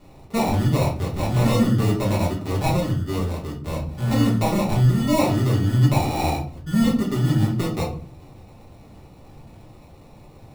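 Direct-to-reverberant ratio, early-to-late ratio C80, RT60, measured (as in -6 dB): -4.5 dB, 13.0 dB, 0.45 s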